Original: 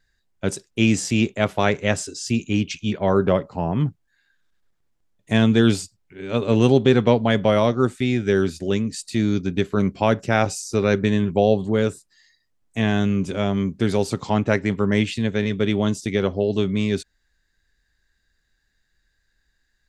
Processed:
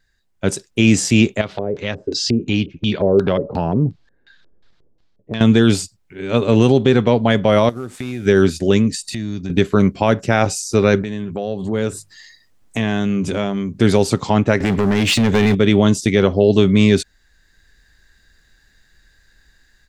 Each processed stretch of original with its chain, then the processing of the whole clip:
1.41–5.41 compressor 2.5:1, threshold -34 dBFS + LFO low-pass square 2.8 Hz 470–4300 Hz
7.69–8.26 CVSD 64 kbps + compressor, threshold -30 dBFS
8.95–9.5 comb 1.1 ms, depth 40% + compressor 4:1, threshold -33 dBFS
11.02–13.78 compressor 2.5:1, threshold -35 dBFS + notches 50/100/150 Hz
14.6–15.55 compressor 4:1, threshold -26 dBFS + sample leveller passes 3
whole clip: AGC; maximiser +4 dB; gain -1 dB

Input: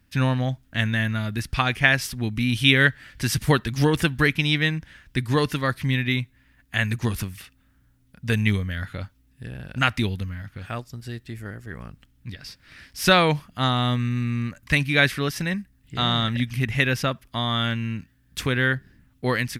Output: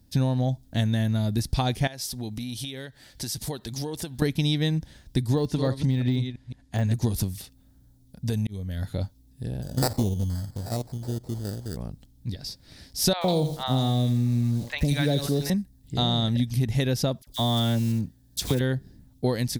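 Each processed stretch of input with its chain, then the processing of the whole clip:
1.87–4.22 low shelf 320 Hz -10 dB + compressor 5:1, threshold -32 dBFS
5.35–6.94 reverse delay 0.168 s, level -12 dB + Bessel low-pass 7700 Hz, order 4 + de-esser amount 90%
8.26–8.96 auto swell 0.49 s + high shelf 11000 Hz +4.5 dB + compressor 4:1, threshold -26 dBFS
9.62–11.77 stepped spectrum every 50 ms + sample-rate reducer 3200 Hz
13.13–15.5 three bands offset in time mids, lows, highs 0.11/0.15 s, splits 800/3500 Hz + lo-fi delay 83 ms, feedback 35%, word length 6-bit, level -11 dB
17.22–18.61 block floating point 5-bit + dispersion lows, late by 48 ms, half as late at 1500 Hz
whole clip: band shelf 1800 Hz -15 dB; compressor, threshold -24 dBFS; gain +4.5 dB

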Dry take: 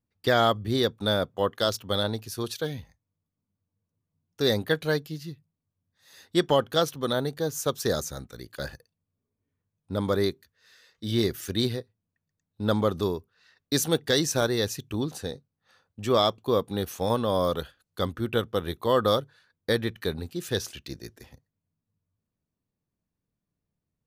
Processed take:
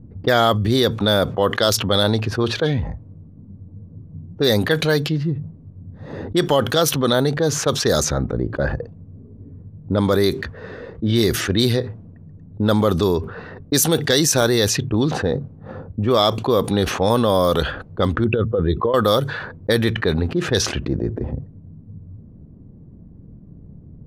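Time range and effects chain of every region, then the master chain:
18.24–18.94 spectral contrast raised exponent 1.7 + negative-ratio compressor -29 dBFS
whole clip: low-pass opened by the level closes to 310 Hz, open at -21.5 dBFS; high shelf 9900 Hz +5.5 dB; fast leveller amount 70%; gain +3.5 dB

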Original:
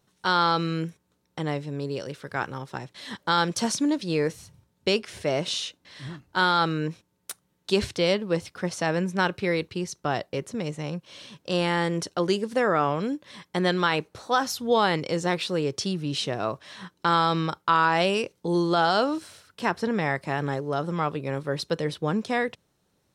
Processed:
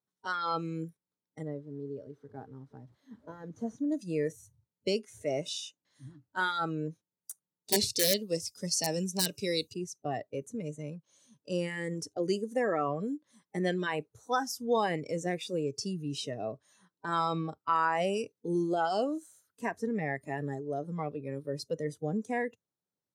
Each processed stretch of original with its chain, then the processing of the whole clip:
1.43–3.92 delta modulation 64 kbps, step -39 dBFS + LPF 1100 Hz 6 dB/oct + low shelf 450 Hz -2.5 dB
7.72–9.74 resonant high shelf 2800 Hz +11.5 dB, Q 1.5 + wrapped overs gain 9.5 dB
whole clip: spectral noise reduction 18 dB; HPF 110 Hz; bell 2600 Hz -8.5 dB 0.49 oct; gain -5.5 dB

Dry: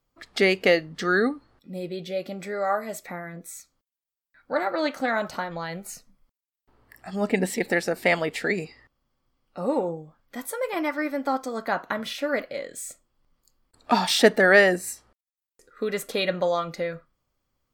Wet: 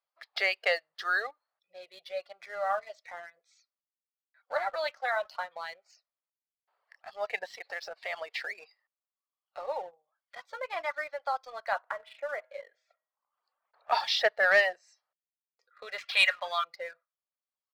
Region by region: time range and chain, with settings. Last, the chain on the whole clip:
7.57–9.67 sample leveller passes 1 + compressor 12:1, threshold -25 dBFS
11.82–13.92 LPF 1800 Hz + de-hum 127.4 Hz, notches 28 + three-band squash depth 40%
15.98–16.64 G.711 law mismatch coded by mu + HPF 900 Hz + bell 2500 Hz +13 dB 1.5 oct
whole clip: elliptic band-pass 610–4900 Hz, stop band 40 dB; reverb removal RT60 1.1 s; sample leveller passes 1; gain -7 dB

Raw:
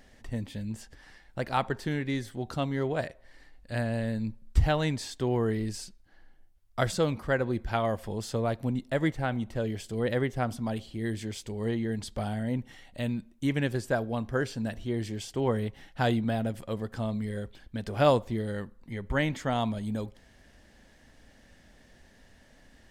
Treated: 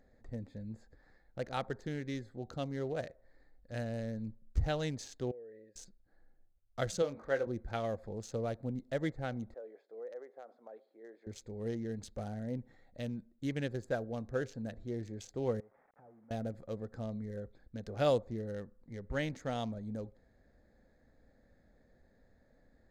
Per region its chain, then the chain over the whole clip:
5.31–5.76 vowel filter e + compressor 5:1, threshold -41 dBFS + mismatched tape noise reduction decoder only
7.02–7.47 G.711 law mismatch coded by mu + tone controls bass -13 dB, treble -11 dB + doubler 22 ms -8 dB
9.54–11.27 HPF 450 Hz 24 dB/oct + compressor 4:1, threshold -34 dBFS + tape spacing loss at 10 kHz 37 dB
15.6–16.31 delta modulation 16 kbps, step -43.5 dBFS + compressor 12:1, threshold -35 dBFS + band-pass 880 Hz, Q 1.3
whole clip: Wiener smoothing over 15 samples; thirty-one-band EQ 500 Hz +6 dB, 1000 Hz -7 dB, 4000 Hz +4 dB, 6300 Hz +10 dB; gain -8.5 dB

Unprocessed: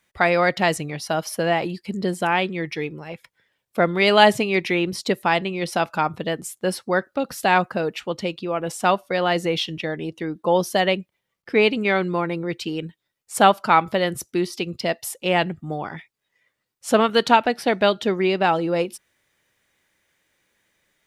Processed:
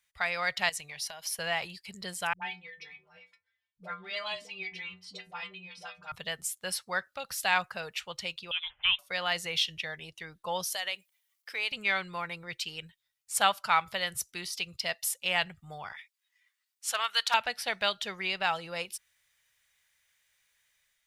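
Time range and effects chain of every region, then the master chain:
0.69–1.39 HPF 290 Hz 6 dB/oct + notch 1300 Hz, Q 5.3 + compressor 12:1, threshold -28 dBFS
2.33–6.12 LPF 4700 Hz + metallic resonator 90 Hz, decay 0.39 s, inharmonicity 0.008 + dispersion highs, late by 90 ms, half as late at 420 Hz
8.51–8.99 de-esser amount 65% + HPF 1200 Hz 6 dB/oct + inverted band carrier 3800 Hz
10.72–11.72 HPF 390 Hz + high shelf 6400 Hz +11 dB + compressor 2:1, threshold -27 dBFS
15.92–17.34 HPF 880 Hz + hard clip -9.5 dBFS
whole clip: passive tone stack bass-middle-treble 10-0-10; AGC gain up to 4.5 dB; gain -4.5 dB

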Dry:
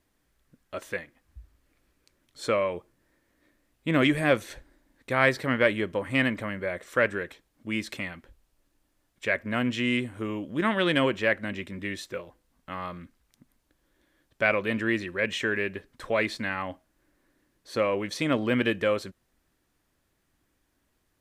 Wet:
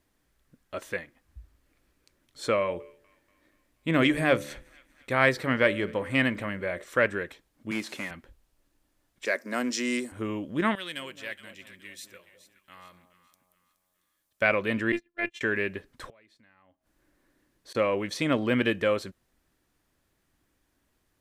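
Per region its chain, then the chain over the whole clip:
2.56–6.84 de-hum 72.43 Hz, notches 8 + thin delay 0.24 s, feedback 56%, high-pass 1400 Hz, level -24 dB
7.71–8.11 delta modulation 64 kbps, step -42.5 dBFS + HPF 180 Hz
9.25–10.12 HPF 240 Hz 24 dB/oct + resonant high shelf 4000 Hz +9 dB, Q 3
10.75–14.42 pre-emphasis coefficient 0.9 + echo with dull and thin repeats by turns 0.21 s, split 930 Hz, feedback 61%, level -10 dB
14.92–15.41 HPF 98 Hz + gate -31 dBFS, range -37 dB + robotiser 344 Hz
16.09–17.75 compressor 3:1, threshold -33 dBFS + flipped gate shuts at -34 dBFS, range -25 dB
whole clip: dry

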